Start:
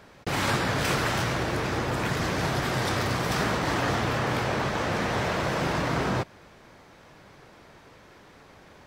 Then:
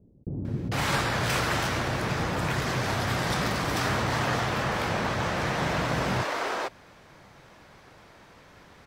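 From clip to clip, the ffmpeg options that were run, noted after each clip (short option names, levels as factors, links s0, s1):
-filter_complex "[0:a]acrossover=split=360[s0][s1];[s1]adelay=450[s2];[s0][s2]amix=inputs=2:normalize=0"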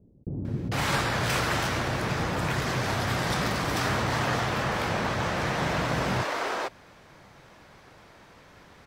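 -af anull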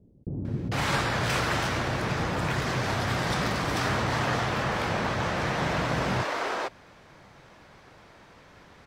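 -af "highshelf=f=11000:g=-8.5"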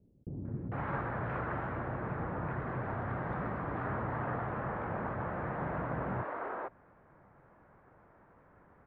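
-af "lowpass=f=1600:w=0.5412,lowpass=f=1600:w=1.3066,volume=0.398"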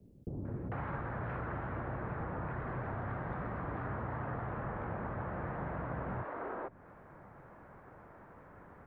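-filter_complex "[0:a]acrossover=split=87|410[s0][s1][s2];[s0]acompressor=threshold=0.00282:ratio=4[s3];[s1]acompressor=threshold=0.00316:ratio=4[s4];[s2]acompressor=threshold=0.00355:ratio=4[s5];[s3][s4][s5]amix=inputs=3:normalize=0,volume=2.11"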